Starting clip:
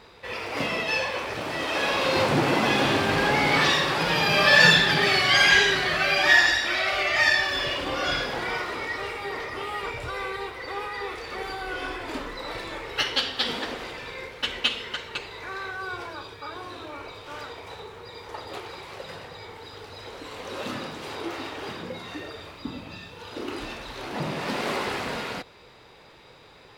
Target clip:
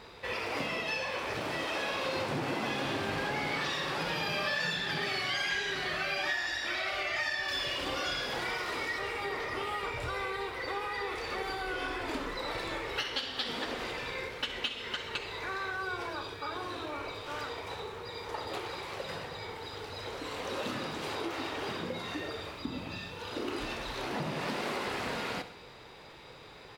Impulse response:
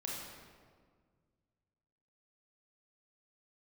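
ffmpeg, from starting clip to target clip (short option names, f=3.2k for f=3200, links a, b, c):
-filter_complex "[0:a]asettb=1/sr,asplit=3[a][b][c];[a]atrim=end=7.484[d];[b]atrim=start=7.48:end=8.99,asetpts=PTS-STARTPTS,afade=t=in:d=0.004:c=qsin,afade=t=out:st=1.506:d=0.004:c=qsin,equalizer=f=12k:t=o:w=2.8:g=6.5[e];[c]atrim=start=8.986[f];[d][e]acrossfade=d=0.004:c1=hsin:c2=qsin[g];[g][f]acrossfade=d=0.004:c1=qsin:c2=hsin,acompressor=threshold=-32dB:ratio=5,aecho=1:1:66|132|198|264|330:0.211|0.108|0.055|0.028|0.0143"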